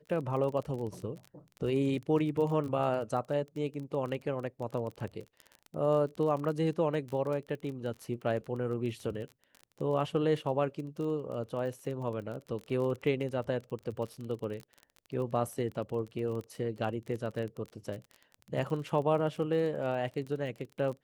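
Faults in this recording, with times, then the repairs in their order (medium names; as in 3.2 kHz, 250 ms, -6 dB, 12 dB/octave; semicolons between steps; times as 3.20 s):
crackle 27 per s -37 dBFS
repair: de-click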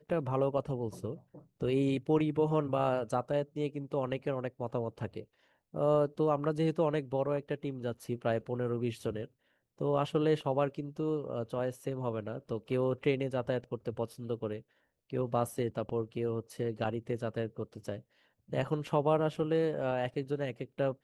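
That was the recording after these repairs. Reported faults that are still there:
nothing left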